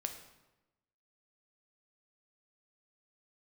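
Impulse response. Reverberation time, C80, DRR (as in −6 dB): 1.0 s, 10.5 dB, 5.5 dB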